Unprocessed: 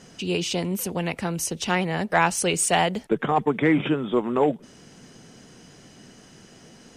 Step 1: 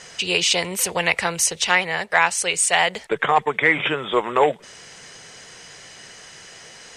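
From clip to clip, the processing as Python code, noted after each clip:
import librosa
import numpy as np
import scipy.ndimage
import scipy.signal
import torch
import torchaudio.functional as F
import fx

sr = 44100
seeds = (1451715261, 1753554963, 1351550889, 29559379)

y = fx.graphic_eq(x, sr, hz=(250, 500, 1000, 2000, 4000, 8000), db=(-11, 6, 6, 12, 8, 11))
y = fx.rider(y, sr, range_db=4, speed_s=0.5)
y = y * 10.0 ** (-4.0 / 20.0)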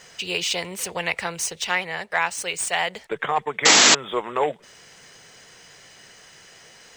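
y = scipy.signal.medfilt(x, 3)
y = fx.spec_paint(y, sr, seeds[0], shape='noise', start_s=3.65, length_s=0.3, low_hz=200.0, high_hz=7800.0, level_db=-8.0)
y = y * 10.0 ** (-5.5 / 20.0)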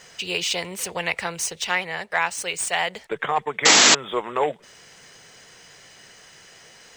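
y = x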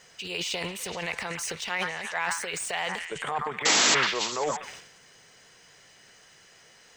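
y = fx.echo_stepped(x, sr, ms=124, hz=1300.0, octaves=0.7, feedback_pct=70, wet_db=-8.5)
y = fx.transient(y, sr, attack_db=-1, sustain_db=11)
y = y * 10.0 ** (-7.5 / 20.0)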